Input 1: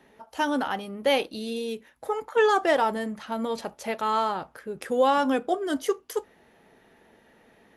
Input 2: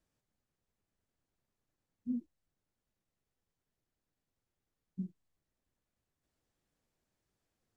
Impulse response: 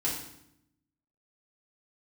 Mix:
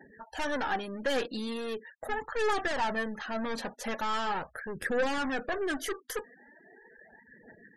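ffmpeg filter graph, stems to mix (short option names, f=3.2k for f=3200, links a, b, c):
-filter_complex "[0:a]aeval=exprs='(tanh(35.5*val(0)+0.25)-tanh(0.25))/35.5':c=same,aphaser=in_gain=1:out_gain=1:delay=4.3:decay=0.44:speed=0.4:type=triangular,volume=1dB[a];[1:a]volume=-16dB[b];[a][b]amix=inputs=2:normalize=0,equalizer=f=1.7k:t=o:w=0.28:g=10,afftfilt=real='re*gte(hypot(re,im),0.00447)':imag='im*gte(hypot(re,im),0.00447)':win_size=1024:overlap=0.75"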